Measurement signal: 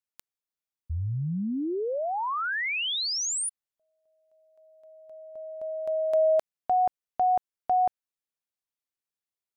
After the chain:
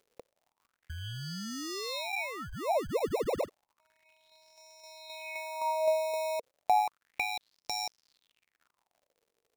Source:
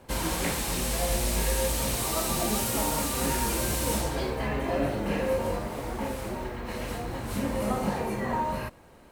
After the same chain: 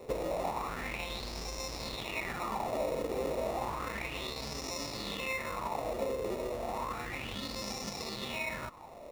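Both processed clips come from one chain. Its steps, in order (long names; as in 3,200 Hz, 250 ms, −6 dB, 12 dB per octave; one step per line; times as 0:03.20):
in parallel at −2.5 dB: brickwall limiter −23.5 dBFS
on the sum: elliptic low-pass filter 8,600 Hz, stop band 40 dB
parametric band 1,300 Hz −10.5 dB 0.75 octaves
decimation without filtering 28×
low-shelf EQ 320 Hz −4.5 dB
downward compressor 3 to 1, threshold −37 dBFS
surface crackle 100 per second −54 dBFS
auto-filter bell 0.32 Hz 450–5,600 Hz +17 dB
level −4 dB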